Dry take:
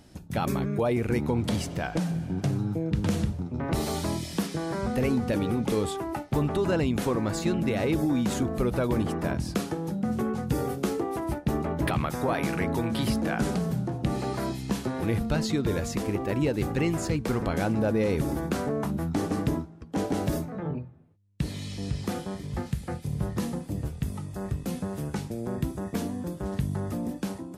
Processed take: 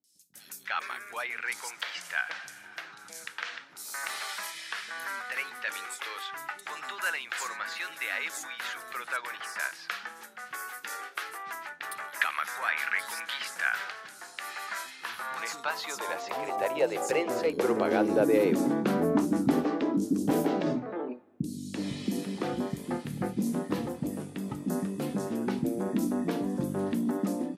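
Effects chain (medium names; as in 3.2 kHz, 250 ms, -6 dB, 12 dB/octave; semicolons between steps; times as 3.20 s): three bands offset in time lows, highs, mids 40/340 ms, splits 310/5100 Hz; high-pass sweep 1.6 kHz -> 260 Hz, 14.82–18.57 s; trim +1 dB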